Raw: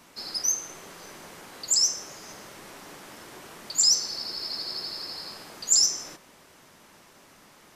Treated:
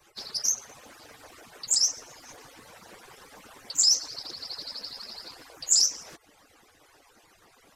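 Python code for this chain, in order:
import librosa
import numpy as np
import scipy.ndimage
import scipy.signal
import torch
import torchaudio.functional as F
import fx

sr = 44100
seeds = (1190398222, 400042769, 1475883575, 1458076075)

y = fx.hpss_only(x, sr, part='percussive')
y = fx.doppler_dist(y, sr, depth_ms=0.21)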